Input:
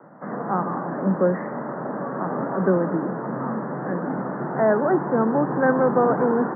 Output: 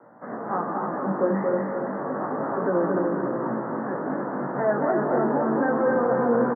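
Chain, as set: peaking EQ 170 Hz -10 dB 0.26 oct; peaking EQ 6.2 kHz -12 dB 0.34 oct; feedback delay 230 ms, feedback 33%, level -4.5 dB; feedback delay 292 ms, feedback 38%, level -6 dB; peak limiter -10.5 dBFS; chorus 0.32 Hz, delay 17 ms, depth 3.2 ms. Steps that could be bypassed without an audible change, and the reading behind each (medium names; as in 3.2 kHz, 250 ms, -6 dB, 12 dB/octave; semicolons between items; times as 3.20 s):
peaking EQ 6.2 kHz: input has nothing above 1.9 kHz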